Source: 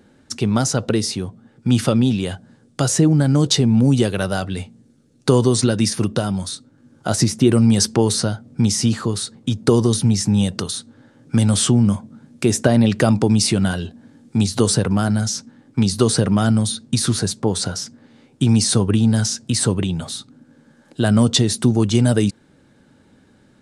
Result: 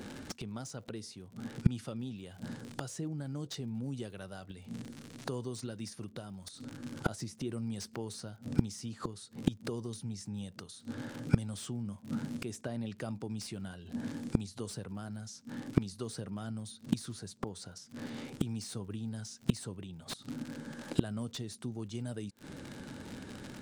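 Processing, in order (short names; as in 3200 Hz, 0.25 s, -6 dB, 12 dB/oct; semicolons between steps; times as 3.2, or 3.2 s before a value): crackle 79/s -31 dBFS; flipped gate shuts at -17 dBFS, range -31 dB; slew limiter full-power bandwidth 28 Hz; gain +7 dB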